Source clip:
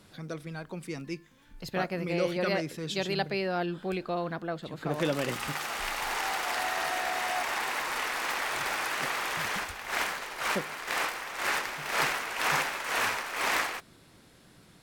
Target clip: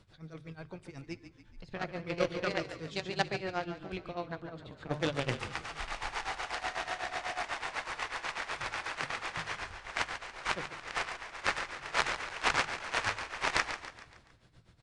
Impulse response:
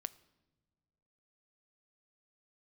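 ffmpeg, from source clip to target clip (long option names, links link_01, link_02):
-filter_complex "[0:a]lowshelf=frequency=140:width_type=q:width=1.5:gain=9.5,aeval=exprs='0.224*(cos(1*acos(clip(val(0)/0.224,-1,1)))-cos(1*PI/2))+0.0224*(cos(2*acos(clip(val(0)/0.224,-1,1)))-cos(2*PI/2))+0.0631*(cos(3*acos(clip(val(0)/0.224,-1,1)))-cos(3*PI/2))+0.00178*(cos(8*acos(clip(val(0)/0.224,-1,1)))-cos(8*PI/2))':channel_layout=same,tremolo=f=8.1:d=0.87,bandreject=frequency=50:width_type=h:width=6,bandreject=frequency=100:width_type=h:width=6,bandreject=frequency=150:width_type=h:width=6,asplit=6[link_01][link_02][link_03][link_04][link_05][link_06];[link_02]adelay=141,afreqshift=-31,volume=-11dB[link_07];[link_03]adelay=282,afreqshift=-62,volume=-17.2dB[link_08];[link_04]adelay=423,afreqshift=-93,volume=-23.4dB[link_09];[link_05]adelay=564,afreqshift=-124,volume=-29.6dB[link_10];[link_06]adelay=705,afreqshift=-155,volume=-35.8dB[link_11];[link_01][link_07][link_08][link_09][link_10][link_11]amix=inputs=6:normalize=0,asplit=2[link_12][link_13];[1:a]atrim=start_sample=2205,lowpass=7200[link_14];[link_13][link_14]afir=irnorm=-1:irlink=0,volume=6dB[link_15];[link_12][link_15]amix=inputs=2:normalize=0,aresample=22050,aresample=44100,volume=3.5dB"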